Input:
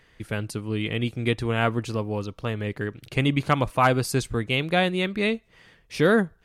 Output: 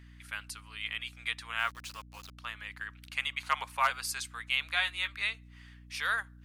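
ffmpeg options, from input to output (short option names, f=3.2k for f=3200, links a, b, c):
-filter_complex "[0:a]highpass=f=1.1k:w=0.5412,highpass=f=1.1k:w=1.3066,asettb=1/sr,asplit=3[a][b][c];[a]atrim=end=1.594[d];[b]atrim=start=1.59:end=2.38,asetpts=PTS-STARTPTS,afade=t=in:d=0.004:c=qsin,afade=t=out:st=0.786:d=0.004:c=qsin,aeval=exprs='val(0)*gte(abs(val(0)),0.0075)':c=same[e];[c]atrim=start=2.376[f];[d][e]acrossfade=d=0.004:c1=hsin:c2=qsin[g];[g][f]acrossfade=d=0.004:c1=qsin:c2=hsin,asettb=1/sr,asplit=3[h][i][j];[h]atrim=end=3.384[k];[i]atrim=start=3.38:end=3.91,asetpts=PTS-STARTPTS,afade=t=in:d=0.004:c=qsin,afade=t=out:st=0.526:d=0.004:c=qsin,afreqshift=-84[l];[j]atrim=start=3.906[m];[k][l]acrossfade=d=0.004:c1=hsin:c2=qsin[n];[n][m]acrossfade=d=0.004:c1=qsin:c2=hsin,aeval=exprs='val(0)+0.00398*(sin(2*PI*60*n/s)+sin(2*PI*2*60*n/s)/2+sin(2*PI*3*60*n/s)/3+sin(2*PI*4*60*n/s)/4+sin(2*PI*5*60*n/s)/5)':c=same,asettb=1/sr,asplit=3[o][p][q];[o]atrim=end=4.644[r];[p]atrim=start=4.64:end=5.15,asetpts=PTS-STARTPTS,afade=t=in:d=0.004:c=qsin,afade=t=out:st=0.506:d=0.004:c=qsin,asplit=2[s][t];[t]adelay=14,volume=-7.5dB[u];[s][u]amix=inputs=2:normalize=0,atrim=end_sample=22491[v];[q]atrim=start=5.146[w];[r][v]acrossfade=d=0.004:c1=hsin:c2=qsin[x];[x][w]acrossfade=d=0.004:c1=qsin:c2=hsin,volume=-3.5dB"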